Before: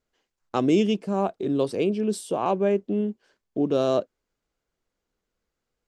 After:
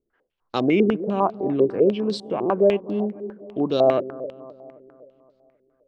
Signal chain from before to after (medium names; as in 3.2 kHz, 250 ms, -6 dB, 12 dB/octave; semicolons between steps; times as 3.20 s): feedback echo behind a low-pass 262 ms, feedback 54%, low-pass 930 Hz, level -15.5 dB; step-sequenced low-pass 10 Hz 370–4300 Hz